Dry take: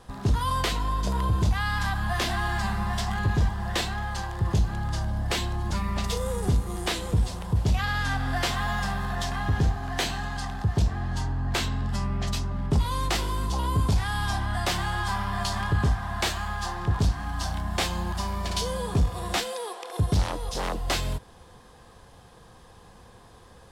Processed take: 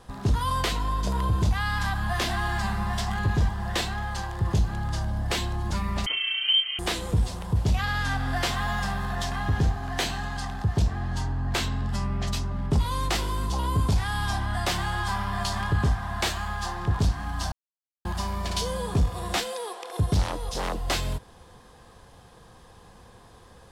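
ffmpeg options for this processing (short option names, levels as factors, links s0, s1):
-filter_complex "[0:a]asettb=1/sr,asplit=3[s0][s1][s2];[s0]atrim=end=6.064[s3];[s1]atrim=start=6.06:end=6.79,asetpts=PTS-STARTPTS,afade=t=in:d=0.004:c=qsin,afade=t=out:st=0.726:d=0.004:c=qsin,lowpass=f=2700:t=q:w=0.5098,lowpass=f=2700:t=q:w=0.6013,lowpass=f=2700:t=q:w=0.9,lowpass=f=2700:t=q:w=2.563,afreqshift=-3200[s4];[s2]atrim=start=6.786[s5];[s3][s4]acrossfade=d=0.004:c1=hsin:c2=qsin[s6];[s6][s5]acrossfade=d=0.004:c1=qsin:c2=hsin,asplit=3[s7][s8][s9];[s7]atrim=end=17.52,asetpts=PTS-STARTPTS,afade=t=out:st=17.516:d=0.004:c=hsin[s10];[s8]atrim=start=17.52:end=18.05,asetpts=PTS-STARTPTS,volume=0[s11];[s9]atrim=start=18.05,asetpts=PTS-STARTPTS,afade=t=in:d=0.004:c=hsin[s12];[s10][s11][s12]concat=n=3:v=0:a=1"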